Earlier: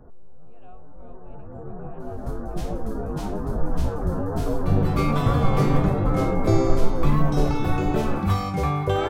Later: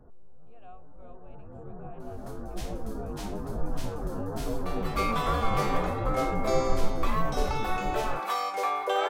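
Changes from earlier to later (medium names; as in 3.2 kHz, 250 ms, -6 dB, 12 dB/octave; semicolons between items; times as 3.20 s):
first sound -6.5 dB; second sound: add high-pass 490 Hz 24 dB/octave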